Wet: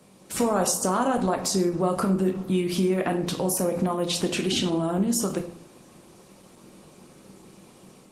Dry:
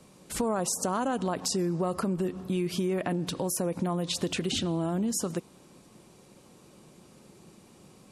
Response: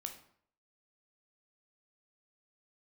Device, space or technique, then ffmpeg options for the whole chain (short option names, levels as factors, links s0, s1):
far-field microphone of a smart speaker: -filter_complex "[0:a]asettb=1/sr,asplit=3[s0][s1][s2];[s0]atrim=end=1.134[s3];[s1]atrim=start=1.13:end=1.73,asetpts=PTS-STARTPTS,afade=t=in:d=0.004:c=qsin,afade=t=out:st=0.596:d=0.004:c=qsin,bandreject=f=3000:w=7.6[s4];[s2]atrim=start=1.726[s5];[s3][s4]acrossfade=d=0.004:c1=hsin:c2=qsin[s6];[s6][s5]acrossfade=d=0.004:c1=qsin:c2=hsin[s7];[1:a]atrim=start_sample=2205[s8];[s7][s8]afir=irnorm=-1:irlink=0,highpass=f=140:p=1,dynaudnorm=f=200:g=3:m=1.5,volume=1.88" -ar 48000 -c:a libopus -b:a 20k